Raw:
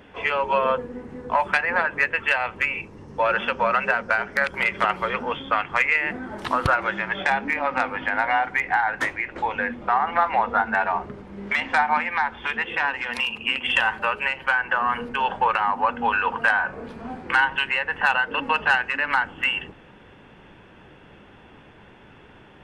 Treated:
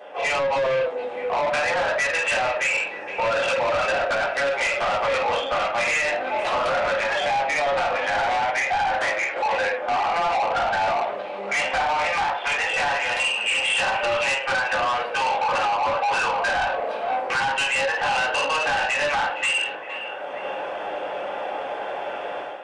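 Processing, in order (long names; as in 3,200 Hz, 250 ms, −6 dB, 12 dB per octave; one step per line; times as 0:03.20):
in parallel at −1 dB: downward compressor, threshold −29 dBFS, peak gain reduction 14 dB
on the sum: high-pass with resonance 600 Hz, resonance Q 7.3
parametric band 830 Hz +2.5 dB 0.44 octaves
rectangular room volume 320 cubic metres, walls furnished, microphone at 3.7 metres
brickwall limiter −2 dBFS, peak gain reduction 10 dB
automatic gain control
dynamic equaliser 2,800 Hz, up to +7 dB, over −28 dBFS, Q 1.7
soft clipping −11.5 dBFS, distortion −9 dB
on a send: echo through a band-pass that steps 465 ms, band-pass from 2,900 Hz, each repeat −0.7 octaves, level −11 dB
on the sum: downsampling to 22,050 Hz
level −8 dB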